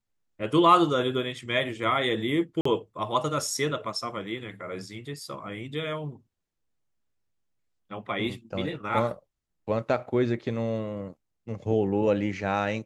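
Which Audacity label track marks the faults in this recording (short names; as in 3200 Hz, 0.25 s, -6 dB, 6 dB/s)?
2.610000	2.650000	gap 44 ms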